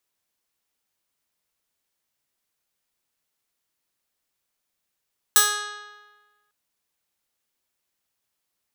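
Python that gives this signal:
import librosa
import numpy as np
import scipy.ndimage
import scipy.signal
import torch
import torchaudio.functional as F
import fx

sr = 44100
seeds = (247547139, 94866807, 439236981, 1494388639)

y = fx.pluck(sr, length_s=1.15, note=68, decay_s=1.34, pick=0.18, brightness='bright')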